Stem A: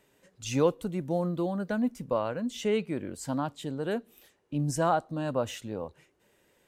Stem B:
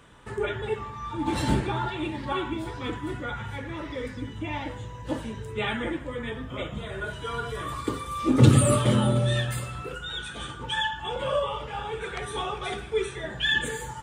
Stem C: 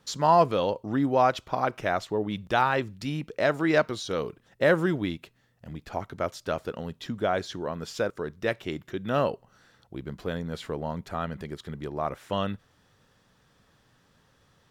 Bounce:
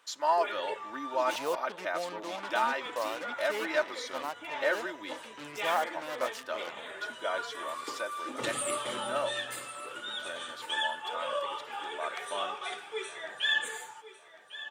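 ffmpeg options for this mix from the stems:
ffmpeg -i stem1.wav -i stem2.wav -i stem3.wav -filter_complex "[0:a]lowpass=3900,acrusher=bits=5:mix=0:aa=0.5,adelay=850,volume=-1.5dB[link_01];[1:a]dynaudnorm=framelen=130:gausssize=5:maxgain=5dB,volume=-8.5dB,asplit=3[link_02][link_03][link_04];[link_02]atrim=end=1.36,asetpts=PTS-STARTPTS,afade=type=out:start_time=1.356:duration=0.004:curve=hsin[link_05];[link_03]atrim=start=1.36:end=2.43,asetpts=PTS-STARTPTS,volume=0[link_06];[link_04]atrim=start=2.43,asetpts=PTS-STARTPTS,afade=type=in:duration=0.004:curve=hsin[link_07];[link_05][link_06][link_07]concat=n=3:v=0:a=1,asplit=2[link_08][link_09];[link_09]volume=-14.5dB[link_10];[2:a]aecho=1:1:3.3:0.77,volume=-6.5dB,asplit=2[link_11][link_12];[link_12]volume=-18dB[link_13];[link_10][link_13]amix=inputs=2:normalize=0,aecho=0:1:1101|2202|3303|4404|5505:1|0.35|0.122|0.0429|0.015[link_14];[link_01][link_08][link_11][link_14]amix=inputs=4:normalize=0,highpass=680" out.wav

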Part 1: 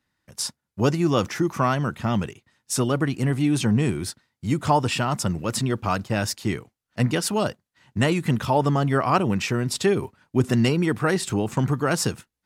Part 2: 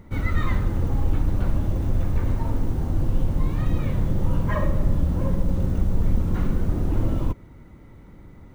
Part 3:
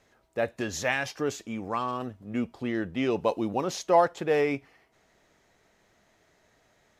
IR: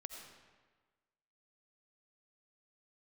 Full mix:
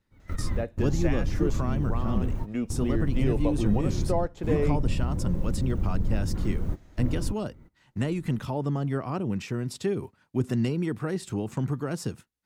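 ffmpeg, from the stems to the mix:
-filter_complex "[0:a]volume=-5.5dB,asplit=2[link_01][link_02];[1:a]volume=-6dB[link_03];[2:a]adelay=200,volume=0dB[link_04];[link_02]apad=whole_len=376722[link_05];[link_03][link_05]sidechaingate=range=-25dB:threshold=-53dB:ratio=16:detection=peak[link_06];[link_01][link_06][link_04]amix=inputs=3:normalize=0,acrossover=split=480[link_07][link_08];[link_08]acompressor=threshold=-44dB:ratio=2[link_09];[link_07][link_09]amix=inputs=2:normalize=0"

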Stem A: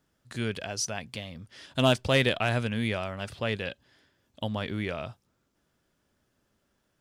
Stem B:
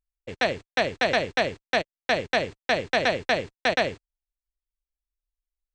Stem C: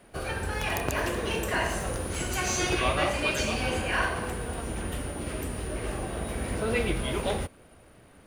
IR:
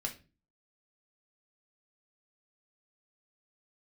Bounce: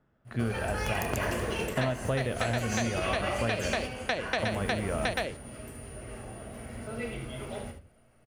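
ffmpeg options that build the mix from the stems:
-filter_complex "[0:a]lowpass=1600,volume=1.5dB,asplit=3[link_01][link_02][link_03];[link_02]volume=-7dB[link_04];[1:a]adelay=1400,volume=-1.5dB[link_05];[2:a]equalizer=frequency=3800:width=7.7:gain=-7.5,adelay=250,volume=-2.5dB,asplit=3[link_06][link_07][link_08];[link_07]volume=-9dB[link_09];[link_08]volume=-17.5dB[link_10];[link_03]apad=whole_len=375298[link_11];[link_06][link_11]sidechaingate=range=-33dB:threshold=-53dB:ratio=16:detection=peak[link_12];[3:a]atrim=start_sample=2205[link_13];[link_04][link_09]amix=inputs=2:normalize=0[link_14];[link_14][link_13]afir=irnorm=-1:irlink=0[link_15];[link_10]aecho=0:1:75:1[link_16];[link_01][link_05][link_12][link_15][link_16]amix=inputs=5:normalize=0,acompressor=threshold=-25dB:ratio=16"

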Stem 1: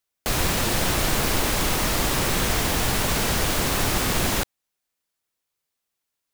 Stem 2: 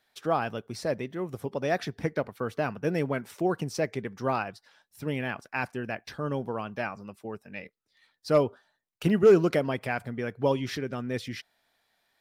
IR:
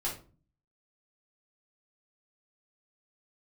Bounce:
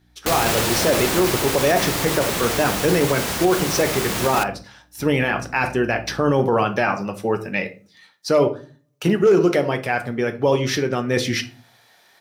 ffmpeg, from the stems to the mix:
-filter_complex "[0:a]aeval=exprs='val(0)+0.0178*(sin(2*PI*60*n/s)+sin(2*PI*2*60*n/s)/2+sin(2*PI*3*60*n/s)/3+sin(2*PI*4*60*n/s)/4+sin(2*PI*5*60*n/s)/5)':channel_layout=same,volume=3dB,asplit=2[link_01][link_02];[link_02]volume=-21.5dB[link_03];[1:a]dynaudnorm=framelen=290:gausssize=3:maxgain=16dB,equalizer=frequency=6000:width_type=o:width=0.25:gain=5.5,volume=0dB,asplit=3[link_04][link_05][link_06];[link_05]volume=-7.5dB[link_07];[link_06]apad=whole_len=279316[link_08];[link_01][link_08]sidechaingate=range=-33dB:threshold=-36dB:ratio=16:detection=peak[link_09];[2:a]atrim=start_sample=2205[link_10];[link_03][link_07]amix=inputs=2:normalize=0[link_11];[link_11][link_10]afir=irnorm=-1:irlink=0[link_12];[link_09][link_04][link_12]amix=inputs=3:normalize=0,highpass=frequency=150:poles=1,dynaudnorm=framelen=410:gausssize=5:maxgain=11.5dB,alimiter=limit=-8dB:level=0:latency=1:release=13"

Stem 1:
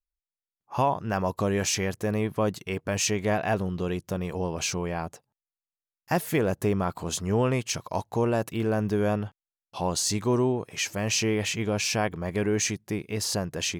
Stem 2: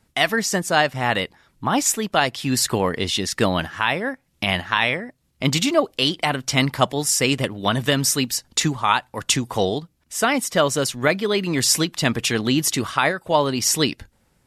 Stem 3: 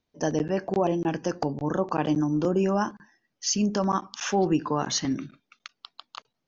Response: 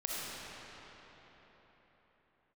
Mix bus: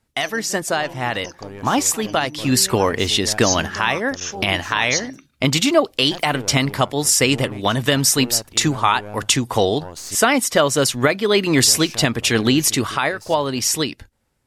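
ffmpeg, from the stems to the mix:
-filter_complex "[0:a]aeval=exprs='(tanh(7.94*val(0)+0.75)-tanh(0.75))/7.94':channel_layout=same,volume=-7.5dB,asplit=3[link_01][link_02][link_03];[link_01]atrim=end=10.15,asetpts=PTS-STARTPTS,afade=type=out:start_time=10.146:duration=0.004:curve=hsin[link_04];[link_02]atrim=start=10.15:end=11.6,asetpts=PTS-STARTPTS,volume=0[link_05];[link_03]atrim=start=11.6,asetpts=PTS-STARTPTS,afade=type=in:duration=0.004:curve=hsin[link_06];[link_04][link_05][link_06]concat=n=3:v=0:a=1[link_07];[1:a]volume=2dB[link_08];[2:a]lowshelf=frequency=490:gain=-4,crystalizer=i=5.5:c=0,volume=-12.5dB[link_09];[link_07][link_08]amix=inputs=2:normalize=0,equalizer=frequency=180:width=7.3:gain=-9.5,alimiter=limit=-8.5dB:level=0:latency=1:release=386,volume=0dB[link_10];[link_09][link_10]amix=inputs=2:normalize=0,agate=range=-8dB:threshold=-42dB:ratio=16:detection=peak,dynaudnorm=framelen=490:gausssize=9:maxgain=6dB"

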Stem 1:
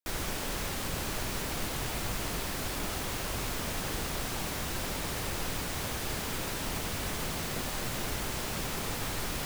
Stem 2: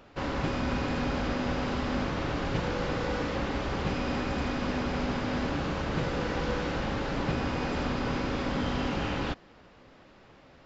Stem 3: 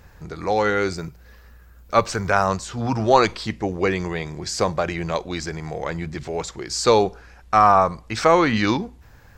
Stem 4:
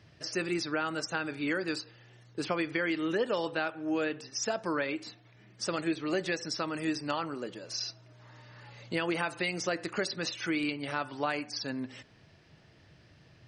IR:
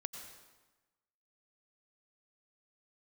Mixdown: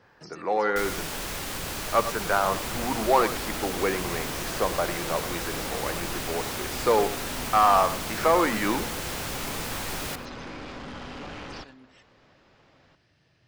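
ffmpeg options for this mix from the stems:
-filter_complex "[0:a]adelay=700,volume=2.5dB,asplit=2[link_01][link_02];[link_02]volume=-18dB[link_03];[1:a]aeval=exprs='(tanh(35.5*val(0)+0.4)-tanh(0.4))/35.5':channel_layout=same,adelay=2300,volume=-2dB,asplit=2[link_04][link_05];[link_05]volume=-15dB[link_06];[2:a]acrossover=split=180 2300:gain=0.0794 1 0.126[link_07][link_08][link_09];[link_07][link_08][link_09]amix=inputs=3:normalize=0,acontrast=48,adynamicequalizer=threshold=0.02:dfrequency=4000:dqfactor=0.7:tfrequency=4000:tqfactor=0.7:attack=5:release=100:ratio=0.375:range=3:mode=boostabove:tftype=highshelf,volume=-8dB,asplit=2[link_10][link_11];[link_11]volume=-12.5dB[link_12];[3:a]acompressor=threshold=-46dB:ratio=2.5,volume=-4.5dB[link_13];[link_03][link_06][link_12]amix=inputs=3:normalize=0,aecho=0:1:98:1[link_14];[link_01][link_04][link_10][link_13][link_14]amix=inputs=5:normalize=0,lowshelf=frequency=420:gain=-4.5"

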